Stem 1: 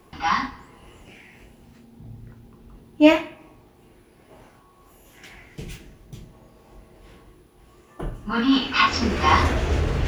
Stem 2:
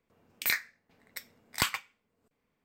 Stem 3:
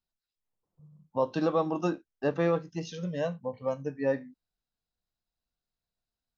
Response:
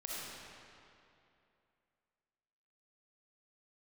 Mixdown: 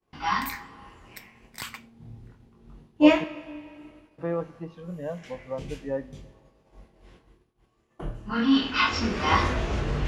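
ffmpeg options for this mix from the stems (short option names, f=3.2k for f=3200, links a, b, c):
-filter_complex "[0:a]lowpass=8.2k,flanger=delay=20:depth=6.9:speed=0.31,volume=-2dB,asplit=2[a][b];[b]volume=-14.5dB[c];[1:a]alimiter=limit=-20.5dB:level=0:latency=1:release=64,volume=-3.5dB[d];[2:a]lowpass=1.6k,adelay=1850,volume=-3dB,asplit=3[e][f][g];[e]atrim=end=3.24,asetpts=PTS-STARTPTS,afade=t=out:st=3.236:d=0.004:c=hsin[h];[f]atrim=start=3.24:end=4.18,asetpts=PTS-STARTPTS,volume=0[i];[g]atrim=start=4.18,asetpts=PTS-STARTPTS,afade=t=in:d=0.004:c=hsin[j];[h][i][j]concat=n=3:v=0:a=1,asplit=2[k][l];[l]volume=-21dB[m];[3:a]atrim=start_sample=2205[n];[c][m]amix=inputs=2:normalize=0[o];[o][n]afir=irnorm=-1:irlink=0[p];[a][d][k][p]amix=inputs=4:normalize=0,agate=range=-33dB:threshold=-47dB:ratio=3:detection=peak"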